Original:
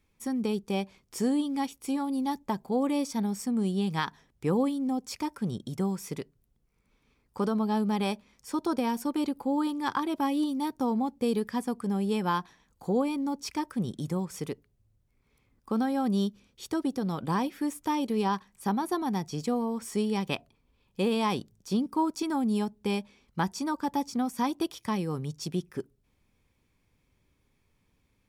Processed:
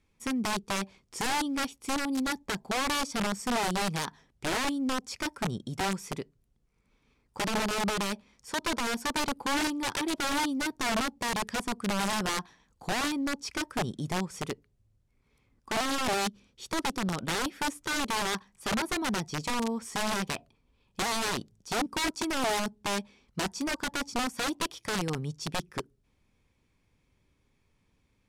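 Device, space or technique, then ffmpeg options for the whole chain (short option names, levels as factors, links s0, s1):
overflowing digital effects unit: -af "aeval=exprs='(mod(15.8*val(0)+1,2)-1)/15.8':c=same,lowpass=9700"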